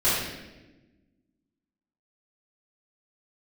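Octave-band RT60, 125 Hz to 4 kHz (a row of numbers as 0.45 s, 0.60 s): 1.7 s, 1.9 s, 1.3 s, 0.90 s, 1.0 s, 0.90 s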